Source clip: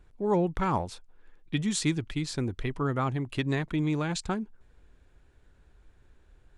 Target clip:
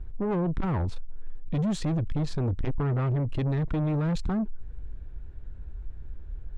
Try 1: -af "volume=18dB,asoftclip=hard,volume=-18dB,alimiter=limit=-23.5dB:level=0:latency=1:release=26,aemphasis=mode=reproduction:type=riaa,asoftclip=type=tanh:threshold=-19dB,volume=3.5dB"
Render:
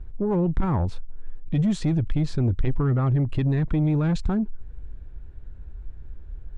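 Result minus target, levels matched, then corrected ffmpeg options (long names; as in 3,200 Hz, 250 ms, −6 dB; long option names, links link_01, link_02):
soft clipping: distortion −5 dB
-af "volume=18dB,asoftclip=hard,volume=-18dB,alimiter=limit=-23.5dB:level=0:latency=1:release=26,aemphasis=mode=reproduction:type=riaa,asoftclip=type=tanh:threshold=-27dB,volume=3.5dB"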